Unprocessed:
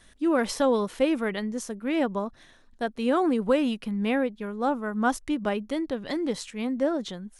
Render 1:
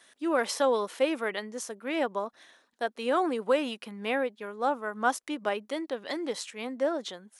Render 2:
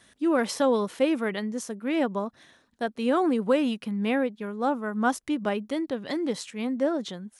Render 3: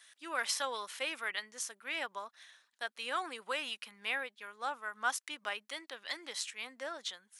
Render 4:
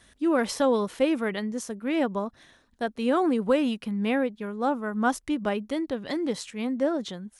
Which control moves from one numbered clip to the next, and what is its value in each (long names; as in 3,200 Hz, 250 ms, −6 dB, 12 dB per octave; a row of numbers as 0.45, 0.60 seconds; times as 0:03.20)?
high-pass filter, corner frequency: 430, 110, 1,500, 42 Hertz